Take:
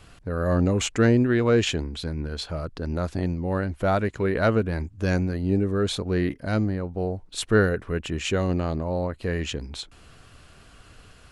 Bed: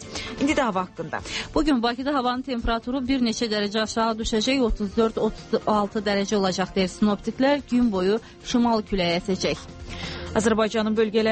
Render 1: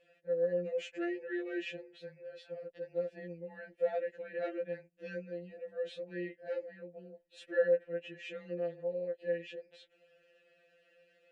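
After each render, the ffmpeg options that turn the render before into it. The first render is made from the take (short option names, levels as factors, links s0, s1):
-filter_complex "[0:a]asplit=3[s0][s1][s2];[s0]bandpass=f=530:t=q:w=8,volume=1[s3];[s1]bandpass=f=1840:t=q:w=8,volume=0.501[s4];[s2]bandpass=f=2480:t=q:w=8,volume=0.355[s5];[s3][s4][s5]amix=inputs=3:normalize=0,afftfilt=real='re*2.83*eq(mod(b,8),0)':imag='im*2.83*eq(mod(b,8),0)':win_size=2048:overlap=0.75"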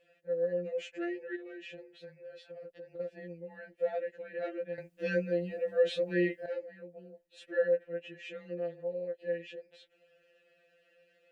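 -filter_complex "[0:a]asplit=3[s0][s1][s2];[s0]afade=t=out:st=1.35:d=0.02[s3];[s1]acompressor=threshold=0.00794:ratio=12:attack=3.2:release=140:knee=1:detection=peak,afade=t=in:st=1.35:d=0.02,afade=t=out:st=2.99:d=0.02[s4];[s2]afade=t=in:st=2.99:d=0.02[s5];[s3][s4][s5]amix=inputs=3:normalize=0,asplit=3[s6][s7][s8];[s6]atrim=end=4.782[s9];[s7]atrim=start=4.778:end=6.462,asetpts=PTS-STARTPTS,volume=3.55[s10];[s8]atrim=start=6.458[s11];[s9][s10]acrossfade=d=0.004:c1=hsin:c2=hsin[s12];[s12][s11]acrossfade=d=0.004:c1=hsin:c2=hsin"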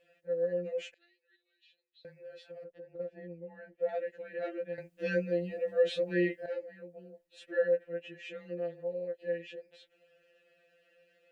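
-filter_complex "[0:a]asettb=1/sr,asplit=3[s0][s1][s2];[s0]atrim=end=0.944[s3];[s1]atrim=start=0.94:end=2.05,asetpts=PTS-STARTPTS,afade=t=in:d=0.004:c=qsin,afade=t=out:st=1.106:d=0.004:c=qsin,bandpass=f=4000:t=q:w=10[s4];[s2]atrim=start=2.046[s5];[s3][s4]acrossfade=d=0.004:c1=hsin:c2=qsin[s6];[s6][s5]acrossfade=d=0.004:c1=qsin:c2=hsin,asettb=1/sr,asplit=3[s7][s8][s9];[s7]atrim=end=2.644[s10];[s8]atrim=start=2.64:end=3.89,asetpts=PTS-STARTPTS,afade=t=in:d=0.004:c=qsin,afade=t=out:st=1.246:d=0.004:c=qsin,lowpass=f=1300:p=1[s11];[s9]atrim=start=3.886[s12];[s10][s11]acrossfade=d=0.004:c1=hsin:c2=qsin[s13];[s13][s12]acrossfade=d=0.004:c1=qsin:c2=hsin,asettb=1/sr,asplit=3[s14][s15][s16];[s14]atrim=end=5.254[s17];[s15]atrim=start=5.25:end=5.88,asetpts=PTS-STARTPTS,afade=t=in:d=0.004:c=qsin,afade=t=out:st=0.626:d=0.004:c=qsin,bandreject=f=1500:w=8.3[s18];[s16]atrim=start=5.876[s19];[s17][s18]acrossfade=d=0.004:c1=hsin:c2=qsin[s20];[s20][s19]acrossfade=d=0.004:c1=qsin:c2=hsin"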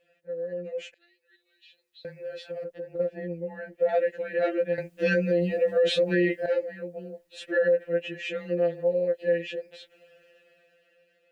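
-af "alimiter=level_in=1.41:limit=0.0631:level=0:latency=1:release=56,volume=0.708,dynaudnorm=f=250:g=11:m=3.76"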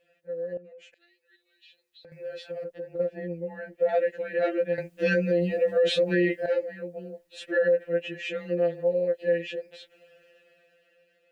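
-filter_complex "[0:a]asettb=1/sr,asplit=3[s0][s1][s2];[s0]atrim=end=0.574[s3];[s1]atrim=start=0.57:end=2.12,asetpts=PTS-STARTPTS,afade=t=in:d=0.004:c=qsin,afade=t=out:st=1.546:d=0.004:c=qsin,acompressor=threshold=0.00355:ratio=4:attack=3.2:release=140:knee=1:detection=peak[s4];[s2]atrim=start=2.116[s5];[s3][s4]acrossfade=d=0.004:c1=hsin:c2=qsin[s6];[s6][s5]acrossfade=d=0.004:c1=qsin:c2=hsin"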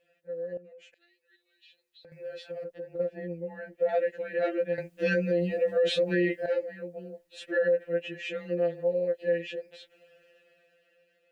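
-af "volume=0.75"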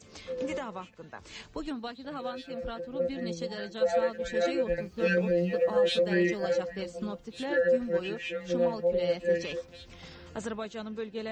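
-filter_complex "[1:a]volume=0.168[s0];[0:a][s0]amix=inputs=2:normalize=0"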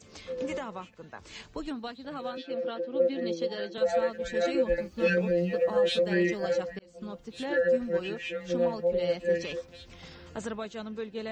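-filter_complex "[0:a]asettb=1/sr,asplit=3[s0][s1][s2];[s0]atrim=end=2.374[s3];[s1]atrim=start=2.37:end=3.78,asetpts=PTS-STARTPTS,afade=t=in:d=0.004:c=qsin,afade=t=out:st=1.406:d=0.004:c=qsin,highpass=f=200:w=0.5412,highpass=f=200:w=1.3066,equalizer=f=330:t=q:w=4:g=8,equalizer=f=520:t=q:w=4:g=5,equalizer=f=3200:t=q:w=4:g=4,lowpass=f=5800:w=0.5412,lowpass=f=5800:w=1.3066[s4];[s2]atrim=start=3.776[s5];[s3][s4]acrossfade=d=0.004:c1=hsin:c2=qsin[s6];[s6][s5]acrossfade=d=0.004:c1=qsin:c2=hsin,asettb=1/sr,asplit=3[s7][s8][s9];[s7]atrim=end=4.544[s10];[s8]atrim=start=4.54:end=5.1,asetpts=PTS-STARTPTS,afade=t=in:d=0.004:c=qsin,afade=t=out:st=0.556:d=0.004:c=qsin,aecho=1:1:3.5:0.65,atrim=end_sample=24696[s11];[s9]atrim=start=5.096[s12];[s10][s11]acrossfade=d=0.004:c1=hsin:c2=qsin[s13];[s13][s12]acrossfade=d=0.004:c1=qsin:c2=hsin,asplit=2[s14][s15];[s14]atrim=end=6.79,asetpts=PTS-STARTPTS,afade=t=out:st=6.786:d=0.004:c=hsin[s16];[s15]atrim=start=6.79,asetpts=PTS-STARTPTS,afade=t=in:d=0.46[s17];[s16][s17]concat=n=2:v=0:a=1"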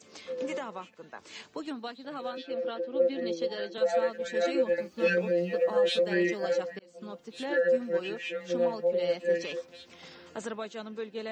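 -af "highpass=230"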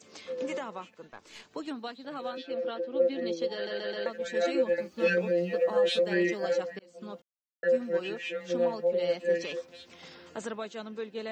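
-filter_complex "[0:a]asettb=1/sr,asplit=3[s0][s1][s2];[s0]atrim=end=1.074[s3];[s1]atrim=start=1.07:end=1.51,asetpts=PTS-STARTPTS,afade=t=in:d=0.004:c=qsin,afade=t=out:st=0.436:d=0.004:c=qsin,aeval=exprs='(tanh(56.2*val(0)+0.7)-tanh(0.7))/56.2':c=same[s4];[s2]atrim=start=1.506[s5];[s3][s4]acrossfade=d=0.004:c1=hsin:c2=qsin[s6];[s6][s5]acrossfade=d=0.004:c1=qsin:c2=hsin,asplit=7[s7][s8][s9][s10][s11][s12][s13];[s7]atrim=end=3.672[s14];[s8]atrim=start=3.538:end=3.672[s15];[s9]atrim=start=3.538:end=3.672[s16];[s10]atrim=start=3.538:end=3.672[s17];[s11]atrim=start=4.058:end=7.22,asetpts=PTS-STARTPTS,afade=t=out:st=3.158:d=0.004:c=hsin[s18];[s12]atrim=start=7.22:end=7.63,asetpts=PTS-STARTPTS,volume=0[s19];[s13]atrim=start=7.63,asetpts=PTS-STARTPTS,afade=t=in:d=0.004:c=hsin[s20];[s14][s15]acrossfade=d=0.004:c1=hsin:c2=hsin[s21];[s21][s16]acrossfade=d=0.004:c1=hsin:c2=hsin[s22];[s22][s17]acrossfade=d=0.004:c1=hsin:c2=hsin[s23];[s18][s19][s20]concat=n=3:v=0:a=1[s24];[s23][s24]acrossfade=d=0.004:c1=hsin:c2=hsin"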